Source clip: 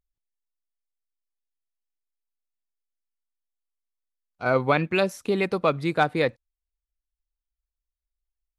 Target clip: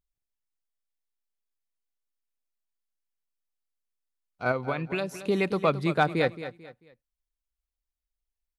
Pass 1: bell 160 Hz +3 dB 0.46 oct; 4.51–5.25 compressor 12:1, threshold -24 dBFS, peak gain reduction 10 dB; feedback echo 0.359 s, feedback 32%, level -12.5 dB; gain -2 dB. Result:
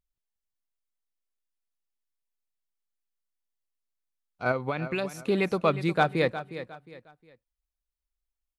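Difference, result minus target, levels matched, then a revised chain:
echo 0.138 s late
bell 160 Hz +3 dB 0.46 oct; 4.51–5.25 compressor 12:1, threshold -24 dBFS, peak gain reduction 10 dB; feedback echo 0.221 s, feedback 32%, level -12.5 dB; gain -2 dB

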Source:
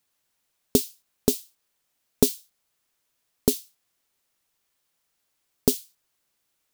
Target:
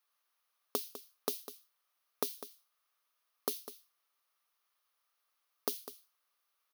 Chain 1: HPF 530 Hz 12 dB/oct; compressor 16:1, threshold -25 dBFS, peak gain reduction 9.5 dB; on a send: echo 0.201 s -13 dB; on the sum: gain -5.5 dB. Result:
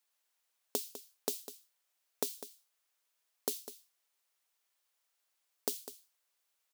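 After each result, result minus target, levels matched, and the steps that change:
1000 Hz band -4.0 dB; 8000 Hz band +3.0 dB
add after compressor: bell 1200 Hz +11.5 dB 0.31 oct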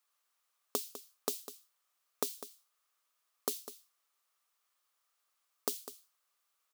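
8000 Hz band +3.0 dB
add after HPF: bell 7600 Hz -14 dB 0.29 oct

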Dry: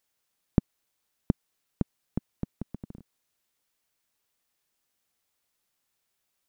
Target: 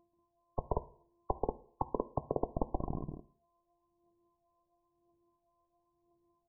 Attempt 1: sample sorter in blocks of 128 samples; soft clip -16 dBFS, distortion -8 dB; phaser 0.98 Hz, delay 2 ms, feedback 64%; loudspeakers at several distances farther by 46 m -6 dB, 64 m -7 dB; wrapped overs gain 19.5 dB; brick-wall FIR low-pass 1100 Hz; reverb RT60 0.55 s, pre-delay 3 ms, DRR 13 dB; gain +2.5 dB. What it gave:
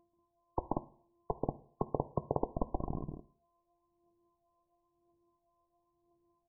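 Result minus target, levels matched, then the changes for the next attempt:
soft clip: distortion +11 dB
change: soft clip -6.5 dBFS, distortion -18 dB

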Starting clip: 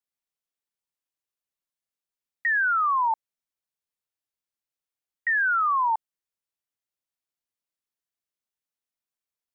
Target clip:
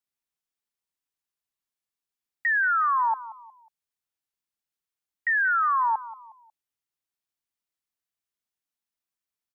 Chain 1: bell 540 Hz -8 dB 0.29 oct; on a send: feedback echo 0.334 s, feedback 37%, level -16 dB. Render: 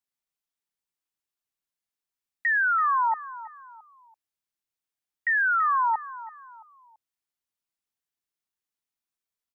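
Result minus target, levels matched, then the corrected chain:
echo 0.153 s late
bell 540 Hz -8 dB 0.29 oct; on a send: feedback echo 0.181 s, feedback 37%, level -16 dB

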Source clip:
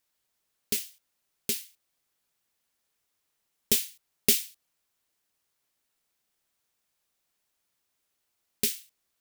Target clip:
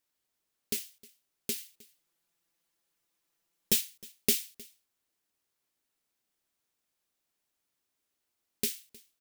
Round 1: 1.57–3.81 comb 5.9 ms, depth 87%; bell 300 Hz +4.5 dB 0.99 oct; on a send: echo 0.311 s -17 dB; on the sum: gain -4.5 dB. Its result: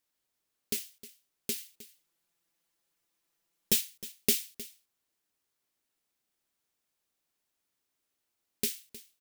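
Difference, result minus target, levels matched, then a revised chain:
echo-to-direct +6 dB
1.57–3.81 comb 5.9 ms, depth 87%; bell 300 Hz +4.5 dB 0.99 oct; on a send: echo 0.311 s -23 dB; on the sum: gain -4.5 dB

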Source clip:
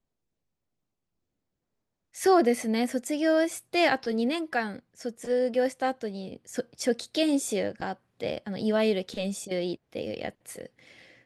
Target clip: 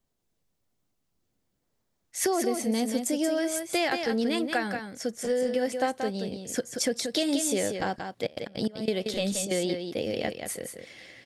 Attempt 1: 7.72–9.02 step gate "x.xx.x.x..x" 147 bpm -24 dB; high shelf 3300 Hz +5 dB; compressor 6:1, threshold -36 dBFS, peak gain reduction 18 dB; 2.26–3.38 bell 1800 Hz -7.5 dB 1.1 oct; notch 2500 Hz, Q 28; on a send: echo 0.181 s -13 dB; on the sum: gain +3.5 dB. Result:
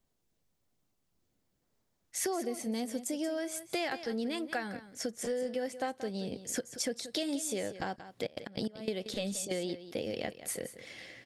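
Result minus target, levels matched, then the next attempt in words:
compressor: peak gain reduction +7.5 dB; echo-to-direct -6.5 dB
7.72–9.02 step gate "x.xx.x.x..x" 147 bpm -24 dB; high shelf 3300 Hz +5 dB; compressor 6:1, threshold -27 dBFS, peak gain reduction 10.5 dB; 2.26–3.38 bell 1800 Hz -7.5 dB 1.1 oct; notch 2500 Hz, Q 28; on a send: echo 0.181 s -6.5 dB; on the sum: gain +3.5 dB

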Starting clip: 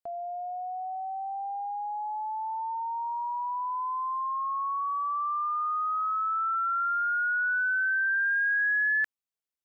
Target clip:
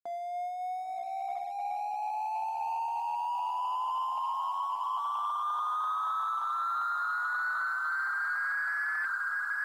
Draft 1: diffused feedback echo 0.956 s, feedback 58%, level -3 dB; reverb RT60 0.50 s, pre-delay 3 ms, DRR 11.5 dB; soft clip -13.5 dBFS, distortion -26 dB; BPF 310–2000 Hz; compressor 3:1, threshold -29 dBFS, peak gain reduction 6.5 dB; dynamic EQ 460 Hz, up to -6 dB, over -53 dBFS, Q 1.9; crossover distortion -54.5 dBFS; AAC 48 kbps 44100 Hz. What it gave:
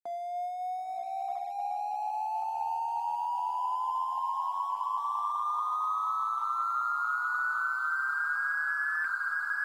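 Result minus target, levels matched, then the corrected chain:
soft clip: distortion -15 dB
diffused feedback echo 0.956 s, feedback 58%, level -3 dB; reverb RT60 0.50 s, pre-delay 3 ms, DRR 11.5 dB; soft clip -25 dBFS, distortion -11 dB; BPF 310–2000 Hz; compressor 3:1, threshold -29 dBFS, peak gain reduction 2.5 dB; dynamic EQ 460 Hz, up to -6 dB, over -53 dBFS, Q 1.9; crossover distortion -54.5 dBFS; AAC 48 kbps 44100 Hz

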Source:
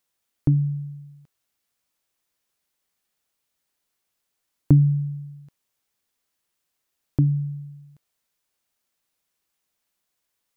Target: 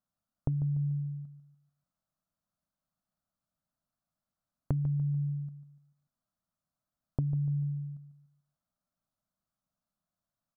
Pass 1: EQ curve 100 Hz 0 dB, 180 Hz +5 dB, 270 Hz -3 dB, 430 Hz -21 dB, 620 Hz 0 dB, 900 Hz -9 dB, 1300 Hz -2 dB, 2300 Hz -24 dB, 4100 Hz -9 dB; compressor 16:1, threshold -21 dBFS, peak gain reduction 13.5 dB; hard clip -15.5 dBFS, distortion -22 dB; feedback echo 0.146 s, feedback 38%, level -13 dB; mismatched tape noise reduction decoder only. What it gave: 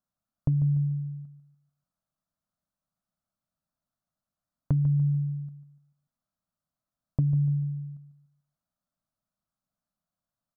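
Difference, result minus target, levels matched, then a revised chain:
compressor: peak gain reduction -6.5 dB
EQ curve 100 Hz 0 dB, 180 Hz +5 dB, 270 Hz -3 dB, 430 Hz -21 dB, 620 Hz 0 dB, 900 Hz -9 dB, 1300 Hz -2 dB, 2300 Hz -24 dB, 4100 Hz -9 dB; compressor 16:1, threshold -28 dBFS, peak gain reduction 20.5 dB; hard clip -15.5 dBFS, distortion -41 dB; feedback echo 0.146 s, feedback 38%, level -13 dB; mismatched tape noise reduction decoder only

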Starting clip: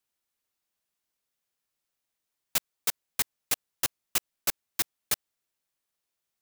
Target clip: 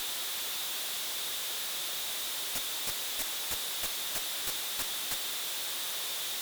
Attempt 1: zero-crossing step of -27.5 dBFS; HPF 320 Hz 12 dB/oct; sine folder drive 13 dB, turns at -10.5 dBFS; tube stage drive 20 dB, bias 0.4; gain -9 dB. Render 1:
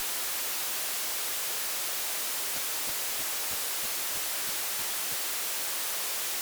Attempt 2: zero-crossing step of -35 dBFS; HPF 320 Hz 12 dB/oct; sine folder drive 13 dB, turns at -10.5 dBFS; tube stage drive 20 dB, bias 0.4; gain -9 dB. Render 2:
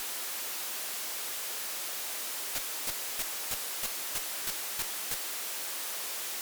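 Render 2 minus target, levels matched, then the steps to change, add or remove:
4000 Hz band -4.0 dB
add after HPF: bell 3600 Hz +11.5 dB 0.37 oct

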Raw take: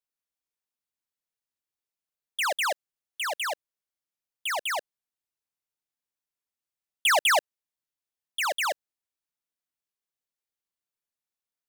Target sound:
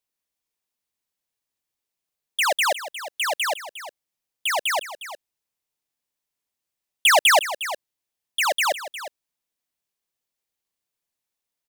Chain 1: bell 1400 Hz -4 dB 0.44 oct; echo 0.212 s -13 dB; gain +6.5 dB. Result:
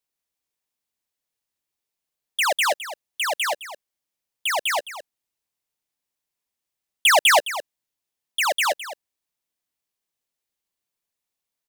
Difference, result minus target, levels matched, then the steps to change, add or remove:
echo 0.145 s early
change: echo 0.357 s -13 dB

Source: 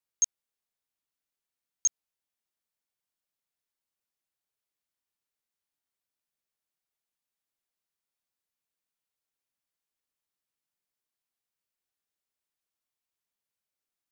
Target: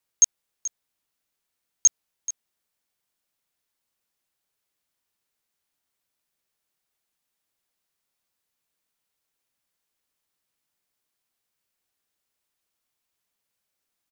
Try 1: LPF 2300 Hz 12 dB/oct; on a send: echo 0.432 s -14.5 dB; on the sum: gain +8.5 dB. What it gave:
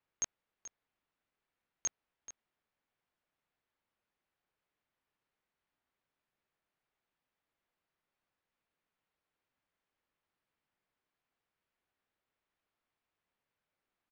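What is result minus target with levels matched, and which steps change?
2000 Hz band +17.0 dB
remove: LPF 2300 Hz 12 dB/oct

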